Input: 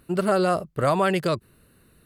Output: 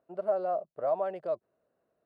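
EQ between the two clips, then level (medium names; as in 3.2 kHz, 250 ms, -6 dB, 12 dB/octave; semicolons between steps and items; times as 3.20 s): band-pass filter 650 Hz, Q 5.1; -2.0 dB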